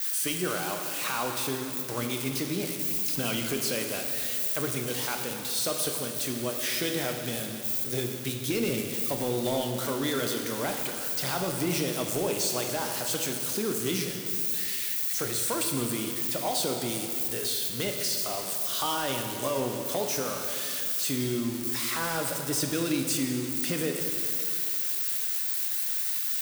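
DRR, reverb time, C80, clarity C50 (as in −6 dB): 3.0 dB, 2.4 s, 5.5 dB, 4.5 dB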